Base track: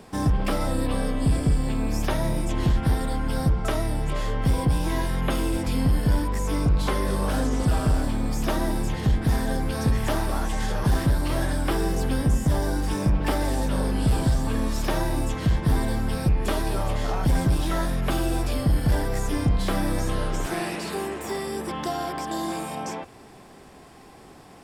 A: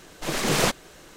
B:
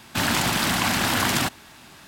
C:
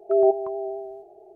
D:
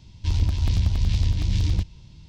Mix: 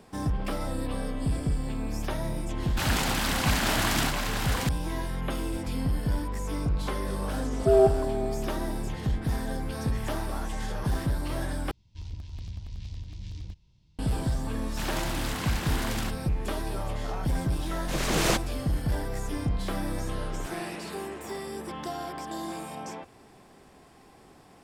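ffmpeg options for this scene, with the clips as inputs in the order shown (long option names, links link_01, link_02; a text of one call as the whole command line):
ffmpeg -i bed.wav -i cue0.wav -i cue1.wav -i cue2.wav -i cue3.wav -filter_complex "[2:a]asplit=2[link_01][link_02];[0:a]volume=-6.5dB[link_03];[link_01]aecho=1:1:701:0.631[link_04];[link_03]asplit=2[link_05][link_06];[link_05]atrim=end=11.714[link_07];[4:a]atrim=end=2.28,asetpts=PTS-STARTPTS,volume=-17dB[link_08];[link_06]atrim=start=13.986[link_09];[link_04]atrim=end=2.07,asetpts=PTS-STARTPTS,volume=-6dB,afade=type=in:duration=0.004:curve=hsin,afade=type=out:start_time=2.066:duration=0.004:curve=hsin,adelay=2620[link_10];[3:a]atrim=end=1.35,asetpts=PTS-STARTPTS,volume=-1dB,afade=type=in:duration=0.004:curve=hsin,afade=type=out:start_time=1.346:duration=0.004:curve=hsin,adelay=7560[link_11];[link_02]atrim=end=2.07,asetpts=PTS-STARTPTS,volume=-12.5dB,afade=type=in:duration=0.004:curve=hsin,afade=type=out:start_time=2.066:duration=0.004:curve=hsin,adelay=14620[link_12];[1:a]atrim=end=1.16,asetpts=PTS-STARTPTS,volume=-3.5dB,afade=type=in:duration=0.004:curve=hsin,afade=type=out:start_time=1.156:duration=0.004:curve=hsin,adelay=17660[link_13];[link_07][link_08]acrossfade=duration=0.004:curve1=hsin:curve2=hsin[link_14];[link_14][link_09]acrossfade=duration=0.004:curve1=hsin:curve2=hsin[link_15];[link_15][link_10][link_11][link_12][link_13]amix=inputs=5:normalize=0" out.wav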